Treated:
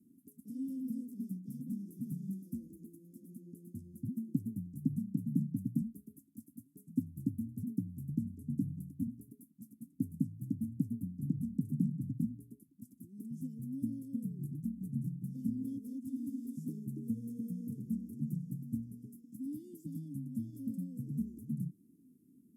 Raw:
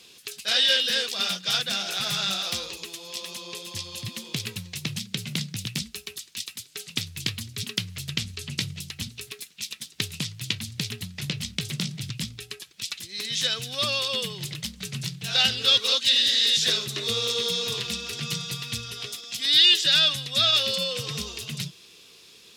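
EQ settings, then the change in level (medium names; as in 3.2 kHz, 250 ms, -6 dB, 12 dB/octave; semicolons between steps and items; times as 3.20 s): vowel filter i; inverse Chebyshev band-stop 890–4100 Hz, stop band 70 dB; treble shelf 9.1 kHz +3 dB; +16.5 dB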